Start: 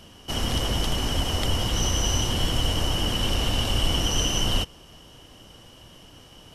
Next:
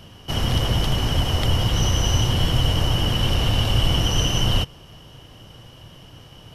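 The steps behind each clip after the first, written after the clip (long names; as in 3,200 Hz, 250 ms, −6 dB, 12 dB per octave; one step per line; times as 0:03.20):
octave-band graphic EQ 125/250/8,000 Hz +8/−3/−7 dB
level +3 dB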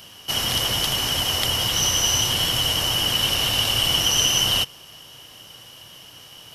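spectral tilt +3.5 dB per octave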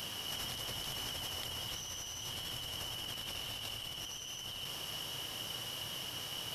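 compressor whose output falls as the input rises −33 dBFS, ratio −1
level −8.5 dB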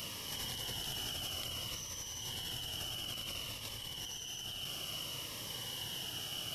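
phaser whose notches keep moving one way falling 0.58 Hz
level +1 dB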